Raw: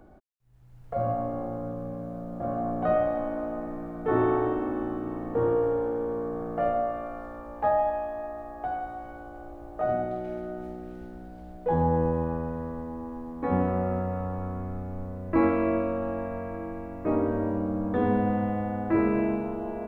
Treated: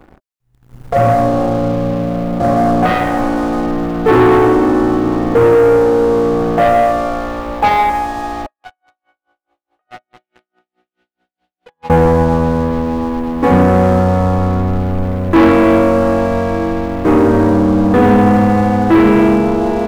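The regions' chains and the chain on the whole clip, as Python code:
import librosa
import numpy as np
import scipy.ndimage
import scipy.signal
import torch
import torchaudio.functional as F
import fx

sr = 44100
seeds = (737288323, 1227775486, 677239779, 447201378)

y = fx.chain(x, sr, fx.bandpass_q(hz=3000.0, q=1.8),
    fx.tremolo_db(hz=4.7, depth_db=35), at=(8.46, 11.9))
y = fx.leveller(y, sr, passes=3)
y = fx.notch(y, sr, hz=620.0, q=12.0)
y = y * librosa.db_to_amplitude(8.0)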